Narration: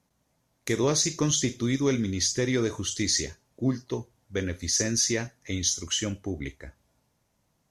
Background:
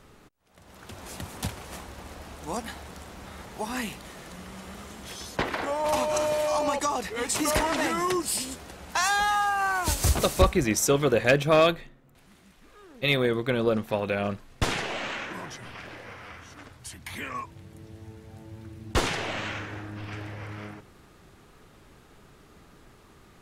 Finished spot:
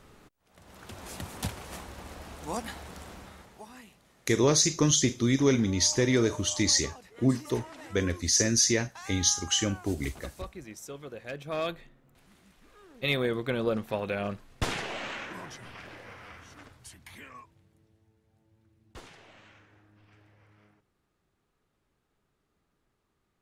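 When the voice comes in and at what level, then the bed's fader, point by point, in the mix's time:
3.60 s, +1.5 dB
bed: 0:03.13 −1.5 dB
0:03.85 −20 dB
0:11.24 −20 dB
0:11.99 −4 dB
0:16.62 −4 dB
0:18.09 −23 dB

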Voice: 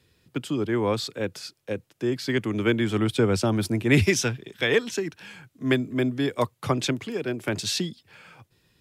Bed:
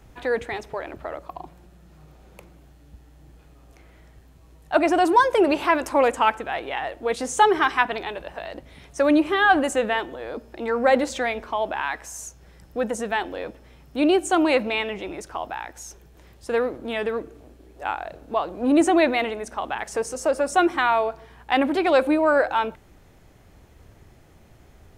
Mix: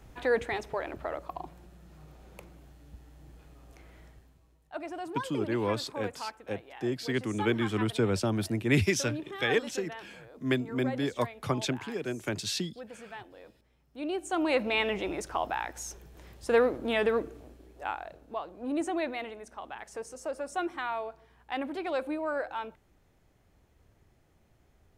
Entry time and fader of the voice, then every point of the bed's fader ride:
4.80 s, −5.5 dB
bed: 0:04.06 −2.5 dB
0:04.74 −19.5 dB
0:13.84 −19.5 dB
0:14.89 −0.5 dB
0:17.26 −0.5 dB
0:18.52 −13.5 dB

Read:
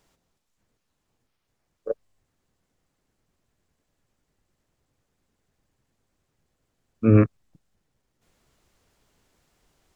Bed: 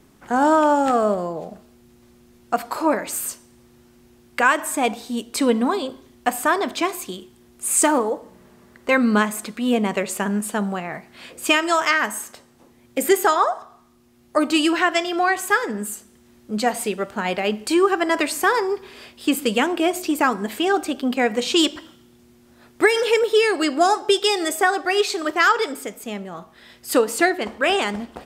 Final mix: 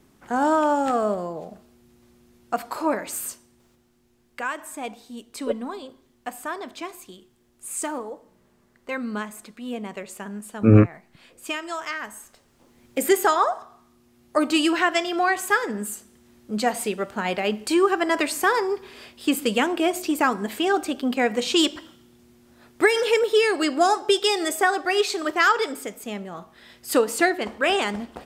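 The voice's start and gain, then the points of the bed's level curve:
3.60 s, +2.5 dB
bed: 0:03.27 −4 dB
0:03.85 −12 dB
0:12.36 −12 dB
0:12.82 −2 dB

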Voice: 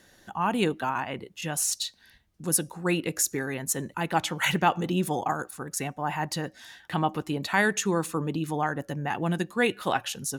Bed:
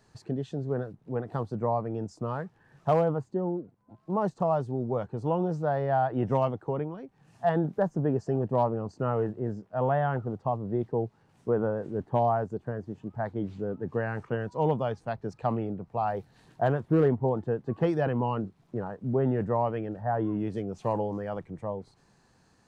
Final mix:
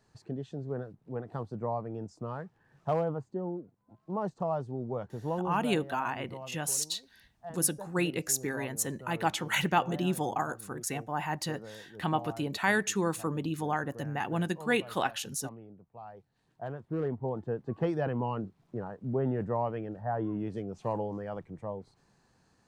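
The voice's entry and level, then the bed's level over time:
5.10 s, −3.5 dB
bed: 0:05.49 −5.5 dB
0:05.89 −18 dB
0:16.23 −18 dB
0:17.57 −4 dB

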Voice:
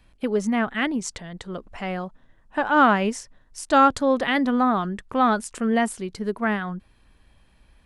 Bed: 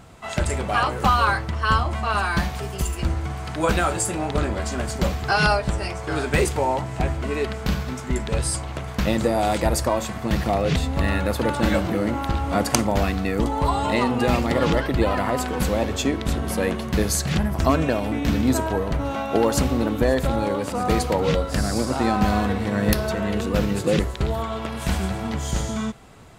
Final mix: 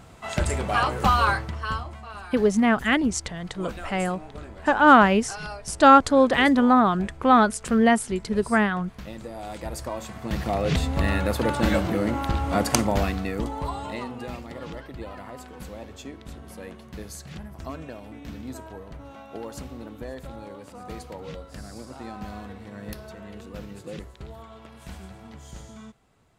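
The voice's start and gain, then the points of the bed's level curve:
2.10 s, +3.0 dB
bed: 0:01.30 −1.5 dB
0:02.11 −17 dB
0:09.27 −17 dB
0:10.77 −1.5 dB
0:12.92 −1.5 dB
0:14.45 −17 dB

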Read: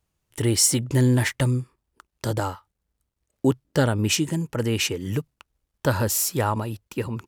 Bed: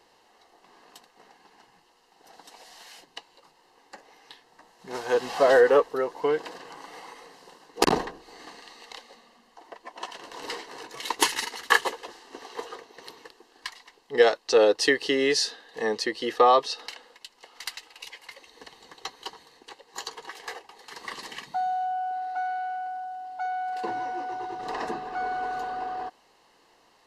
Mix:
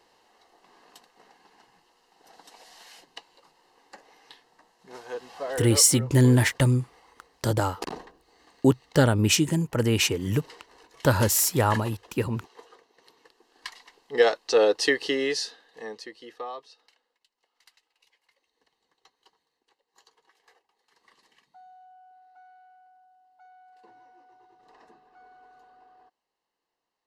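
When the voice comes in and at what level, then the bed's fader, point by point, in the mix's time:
5.20 s, +1.0 dB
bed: 0:04.35 −2 dB
0:05.29 −13.5 dB
0:13.10 −13.5 dB
0:13.73 −1 dB
0:15.07 −1 dB
0:16.91 −24 dB

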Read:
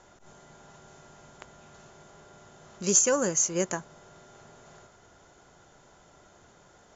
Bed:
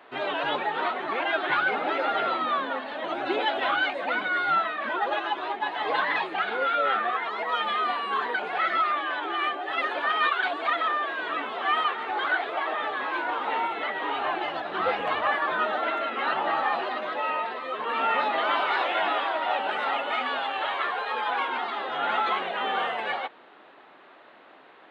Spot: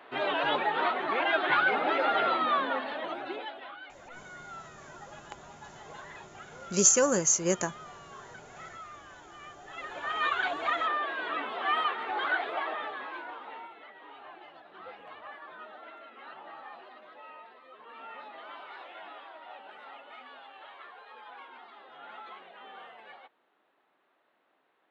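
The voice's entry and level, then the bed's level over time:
3.90 s, +0.5 dB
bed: 0:02.89 −0.5 dB
0:03.78 −21.5 dB
0:09.42 −21.5 dB
0:10.33 −3.5 dB
0:12.56 −3.5 dB
0:13.86 −20.5 dB

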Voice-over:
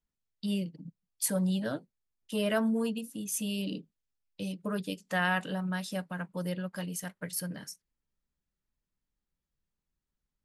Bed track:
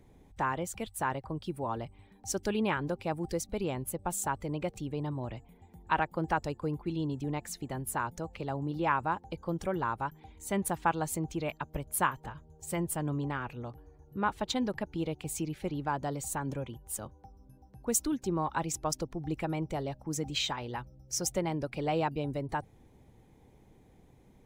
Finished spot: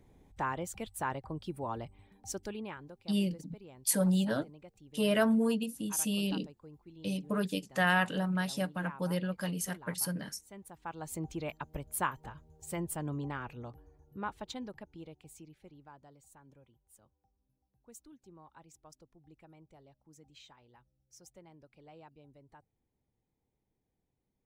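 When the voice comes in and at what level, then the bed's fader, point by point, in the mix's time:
2.65 s, +1.5 dB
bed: 0:02.18 −3 dB
0:03.01 −19 dB
0:10.72 −19 dB
0:11.21 −4 dB
0:13.80 −4 dB
0:16.19 −24.5 dB

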